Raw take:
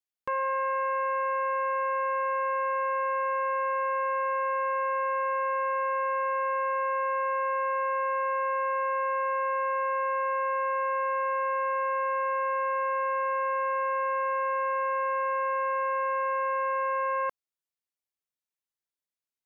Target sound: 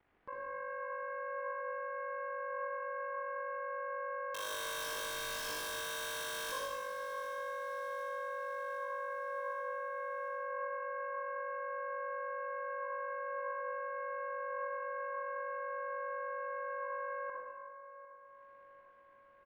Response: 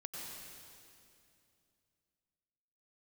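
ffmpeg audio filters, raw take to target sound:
-filter_complex "[0:a]lowpass=frequency=2100:width=0.5412,lowpass=frequency=2100:width=1.3066,acompressor=mode=upward:threshold=-52dB:ratio=2.5,alimiter=level_in=9dB:limit=-24dB:level=0:latency=1,volume=-9dB,aeval=exprs='val(0)*sin(2*PI*25*n/s)':channel_layout=same,flanger=delay=0.1:depth=2.2:regen=88:speed=0.25:shape=sinusoidal,asettb=1/sr,asplit=3[link_01][link_02][link_03];[link_01]atrim=end=4.344[link_04];[link_02]atrim=start=4.34:end=6.52,asetpts=PTS-STARTPTS,afade=type=in:duration=0.004:curve=qsin,afade=type=out:start_time=2.176:duration=0.004:curve=qsin,aeval=exprs='(mod(119*val(0)+1,2)-1)/119':channel_layout=same[link_05];[link_03]atrim=start=6.516[link_06];[link_04][link_05]acrossfade=duration=0.004:curve1=hsin:curve2=qsin[link_07];[link_07][link_06]acrossfade=duration=0.004:curve1=qsin:curve2=hsin,aecho=1:1:753|1506|2259|3012|3765:0.15|0.0868|0.0503|0.0292|0.0169[link_08];[1:a]atrim=start_sample=2205,asetrate=83790,aresample=44100[link_09];[link_08][link_09]afir=irnorm=-1:irlink=0,volume=15.5dB"

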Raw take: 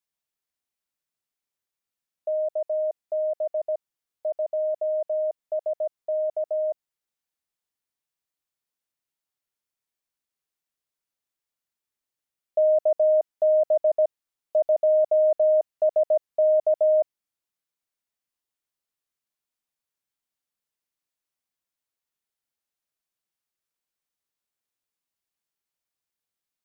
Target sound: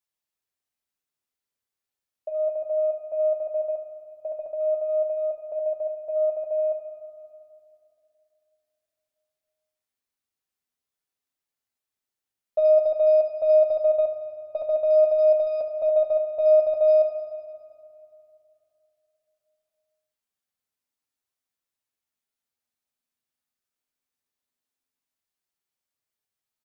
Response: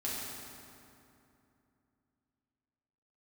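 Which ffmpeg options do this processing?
-filter_complex "[0:a]aecho=1:1:71:0.251,aeval=exprs='0.224*(cos(1*acos(clip(val(0)/0.224,-1,1)))-cos(1*PI/2))+0.00316*(cos(6*acos(clip(val(0)/0.224,-1,1)))-cos(6*PI/2))+0.00251*(cos(8*acos(clip(val(0)/0.224,-1,1)))-cos(8*PI/2))':channel_layout=same,asplit=2[link_01][link_02];[1:a]atrim=start_sample=2205[link_03];[link_02][link_03]afir=irnorm=-1:irlink=0,volume=-6.5dB[link_04];[link_01][link_04]amix=inputs=2:normalize=0,flanger=delay=9.3:depth=3.7:regen=-41:speed=0.15:shape=sinusoidal"

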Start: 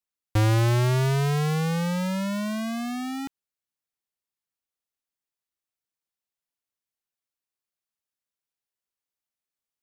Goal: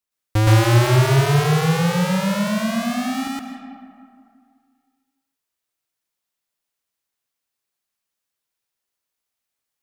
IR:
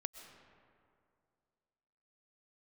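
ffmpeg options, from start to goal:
-filter_complex "[0:a]asplit=2[link_01][link_02];[1:a]atrim=start_sample=2205,lowshelf=frequency=440:gain=-5,adelay=118[link_03];[link_02][link_03]afir=irnorm=-1:irlink=0,volume=6.5dB[link_04];[link_01][link_04]amix=inputs=2:normalize=0,volume=3.5dB"

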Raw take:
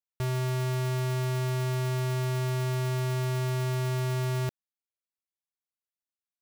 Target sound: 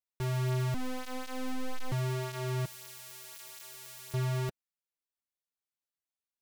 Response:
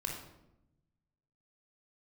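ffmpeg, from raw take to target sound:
-filter_complex "[0:a]asettb=1/sr,asplit=3[link_01][link_02][link_03];[link_01]atrim=end=2.654[link_04];[link_02]atrim=start=2.65:end=4.14,asetpts=PTS-STARTPTS,afade=type=in:duration=0.004:curve=qsin,afade=type=out:start_time=1.486:duration=0.004:curve=qsin,aderivative[link_05];[link_03]atrim=start=4.136[link_06];[link_04][link_05]acrossfade=duration=0.004:curve1=hsin:curve2=qsin[link_07];[link_07][link_06]acrossfade=duration=0.004:curve1=qsin:curve2=hsin,flanger=delay=3.9:depth=8.6:regen=-15:speed=0.43:shape=triangular,asettb=1/sr,asplit=3[link_08][link_09][link_10];[link_08]atrim=end=0.744[link_11];[link_09]atrim=start=0.74:end=1.92,asetpts=PTS-STARTPTS,afade=type=in:duration=0.004:curve=qsin,afade=type=out:start_time=1.176:duration=0.004:curve=qsin,aeval=exprs='abs(val(0))':channel_layout=same[link_12];[link_10]atrim=start=1.916[link_13];[link_11][link_12]acrossfade=duration=0.004:curve1=hsin:curve2=qsin[link_14];[link_14][link_13]acrossfade=duration=0.004:curve1=qsin:curve2=hsin"

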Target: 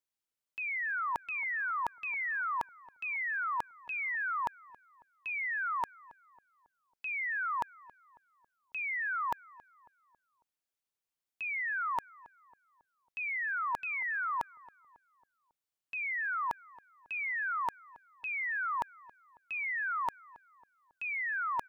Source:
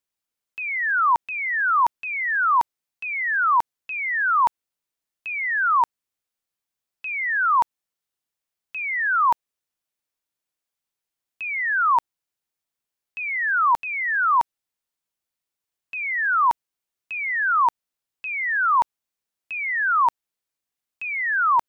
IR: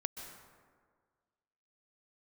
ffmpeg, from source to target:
-filter_complex "[0:a]areverse,acompressor=threshold=-26dB:ratio=6,areverse,asplit=2[link_01][link_02];[link_02]adelay=274,lowpass=frequency=1500:poles=1,volume=-20dB,asplit=2[link_03][link_04];[link_04]adelay=274,lowpass=frequency=1500:poles=1,volume=0.51,asplit=2[link_05][link_06];[link_06]adelay=274,lowpass=frequency=1500:poles=1,volume=0.51,asplit=2[link_07][link_08];[link_08]adelay=274,lowpass=frequency=1500:poles=1,volume=0.51[link_09];[link_01][link_03][link_05][link_07][link_09]amix=inputs=5:normalize=0,volume=-6.5dB"

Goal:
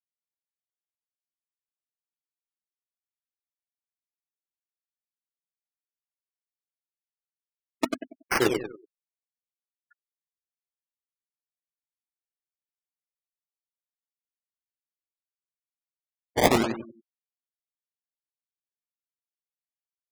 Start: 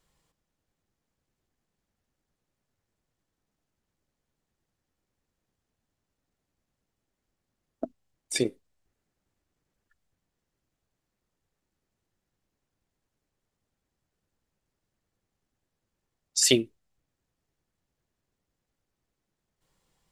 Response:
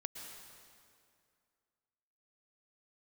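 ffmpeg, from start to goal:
-af "afftfilt=real='re*pow(10,8/40*sin(2*PI*(0.51*log(max(b,1)*sr/1024/100)/log(2)-(2)*(pts-256)/sr)))':imag='im*pow(10,8/40*sin(2*PI*(0.51*log(max(b,1)*sr/1024/100)/log(2)-(2)*(pts-256)/sr)))':win_size=1024:overlap=0.75,areverse,acompressor=threshold=-33dB:ratio=6,areverse,equalizer=frequency=8800:width=2.9:gain=12.5,aecho=1:1:94|188|282|376|470:0.562|0.214|0.0812|0.0309|0.0117,acrusher=samples=23:mix=1:aa=0.000001:lfo=1:lforange=23:lforate=0.69,lowshelf=frequency=110:gain=-9.5,dynaudnorm=framelen=150:gausssize=5:maxgain=15dB,afftfilt=real='re*gte(hypot(re,im),0.0224)':imag='im*gte(hypot(re,im),0.0224)':win_size=1024:overlap=0.75,volume=-2.5dB"

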